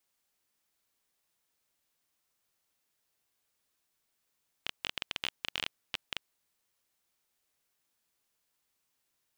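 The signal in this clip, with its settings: random clicks 15/s -15 dBFS 1.65 s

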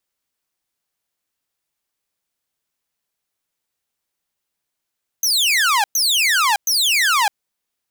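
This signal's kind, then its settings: burst of laser zaps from 6400 Hz, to 780 Hz, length 0.61 s saw, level -11 dB, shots 3, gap 0.11 s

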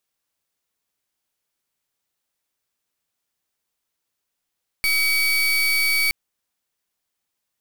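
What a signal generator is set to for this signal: pulse 2270 Hz, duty 32% -19.5 dBFS 1.27 s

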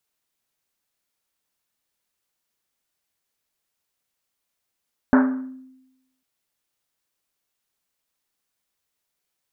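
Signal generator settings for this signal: Risset drum, pitch 260 Hz, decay 0.97 s, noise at 1200 Hz, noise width 950 Hz, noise 20%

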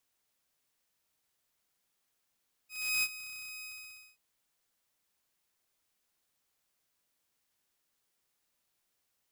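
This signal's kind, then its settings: ADSR saw 2520 Hz, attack 0.338 s, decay 49 ms, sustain -16 dB, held 0.95 s, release 0.531 s -24 dBFS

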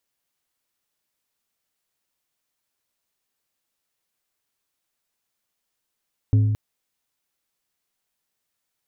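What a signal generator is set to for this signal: glass hit plate, length 0.22 s, lowest mode 106 Hz, decay 1.56 s, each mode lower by 12 dB, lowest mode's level -12 dB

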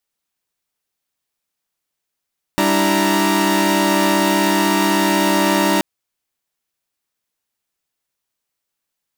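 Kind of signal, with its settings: chord G3/D4/E4/A#5 saw, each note -17 dBFS 3.23 s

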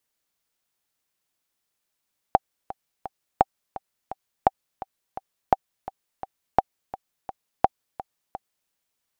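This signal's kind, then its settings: metronome 170 bpm, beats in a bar 3, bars 6, 774 Hz, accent 17 dB -2 dBFS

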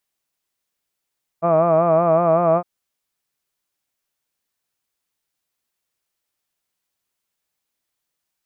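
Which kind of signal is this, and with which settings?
formant-synthesis vowel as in hud, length 1.21 s, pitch 164 Hz, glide +0.5 st, vibrato depth 0.8 st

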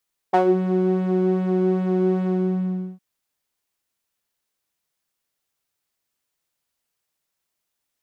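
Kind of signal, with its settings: synth patch with pulse-width modulation F#4, detune 24 cents, sub -1.5 dB, filter bandpass, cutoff 160 Hz, Q 2.9, filter envelope 2.5 oct, filter decay 0.22 s, filter sustain 30%, attack 16 ms, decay 0.10 s, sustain -6.5 dB, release 0.74 s, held 1.92 s, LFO 2.5 Hz, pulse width 24%, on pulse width 18%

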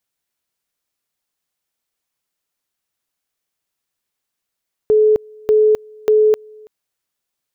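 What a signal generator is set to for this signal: two-level tone 429 Hz -8.5 dBFS, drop 28.5 dB, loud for 0.26 s, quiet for 0.33 s, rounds 3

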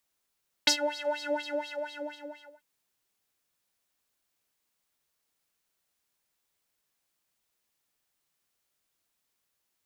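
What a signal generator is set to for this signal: synth patch with filter wobble D5, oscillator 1 triangle, oscillator 2 square, interval -12 st, oscillator 2 level -5.5 dB, sub -1 dB, noise -16 dB, filter bandpass, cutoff 1200 Hz, Q 3.8, filter envelope 1.5 oct, filter decay 0.06 s, filter sustain 30%, attack 7.3 ms, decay 0.09 s, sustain -21 dB, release 1.40 s, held 0.55 s, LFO 4.2 Hz, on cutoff 1.5 oct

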